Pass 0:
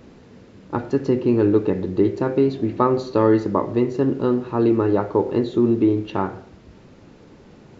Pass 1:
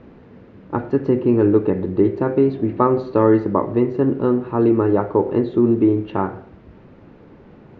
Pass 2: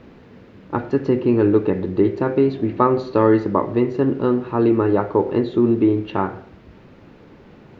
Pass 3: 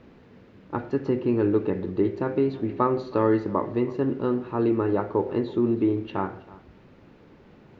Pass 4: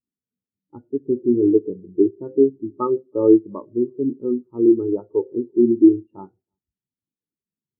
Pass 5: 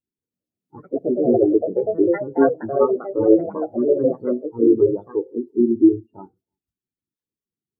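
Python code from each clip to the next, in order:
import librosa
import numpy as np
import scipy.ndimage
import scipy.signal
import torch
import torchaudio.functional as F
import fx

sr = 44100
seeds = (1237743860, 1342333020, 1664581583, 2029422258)

y1 = scipy.signal.sosfilt(scipy.signal.butter(2, 2200.0, 'lowpass', fs=sr, output='sos'), x)
y1 = y1 * librosa.db_to_amplitude(2.0)
y2 = fx.high_shelf(y1, sr, hz=2500.0, db=11.5)
y2 = y2 * librosa.db_to_amplitude(-1.0)
y3 = y2 + 10.0 ** (-20.5 / 20.0) * np.pad(y2, (int(323 * sr / 1000.0), 0))[:len(y2)]
y3 = y3 * librosa.db_to_amplitude(-6.5)
y4 = fx.air_absorb(y3, sr, metres=220.0)
y4 = fx.spectral_expand(y4, sr, expansion=2.5)
y4 = y4 * librosa.db_to_amplitude(6.0)
y5 = fx.spec_quant(y4, sr, step_db=30)
y5 = fx.echo_pitch(y5, sr, ms=186, semitones=4, count=2, db_per_echo=-3.0)
y5 = y5 * librosa.db_to_amplitude(-1.0)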